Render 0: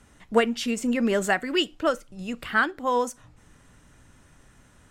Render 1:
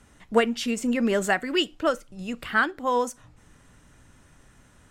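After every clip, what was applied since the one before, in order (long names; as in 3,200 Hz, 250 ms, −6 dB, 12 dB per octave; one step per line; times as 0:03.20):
no processing that can be heard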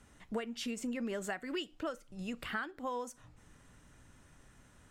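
downward compressor 5 to 1, threshold −30 dBFS, peak gain reduction 14.5 dB
level −5.5 dB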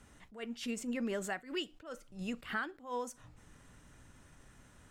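level that may rise only so fast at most 160 dB per second
level +1.5 dB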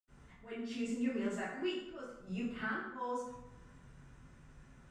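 convolution reverb RT60 0.85 s, pre-delay 76 ms
level +11.5 dB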